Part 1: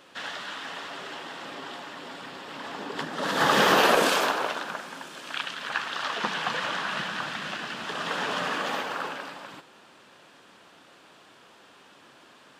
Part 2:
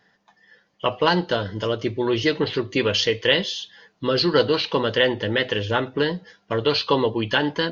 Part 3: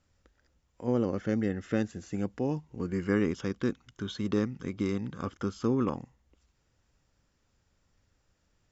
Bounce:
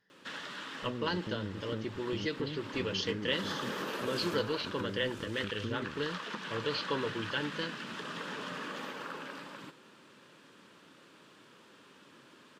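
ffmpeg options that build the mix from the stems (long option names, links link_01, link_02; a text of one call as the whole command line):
ffmpeg -i stem1.wav -i stem2.wav -i stem3.wav -filter_complex "[0:a]highpass=110,adelay=100,volume=-5dB[link_01];[1:a]volume=-13.5dB[link_02];[2:a]aeval=exprs='sgn(val(0))*max(abs(val(0))-0.00891,0)':channel_layout=same,volume=-7dB[link_03];[link_01][link_03]amix=inputs=2:normalize=0,lowshelf=frequency=430:gain=7.5,acompressor=threshold=-38dB:ratio=3,volume=0dB[link_04];[link_02][link_04]amix=inputs=2:normalize=0,equalizer=frequency=730:width_type=o:width=0.37:gain=-11.5" out.wav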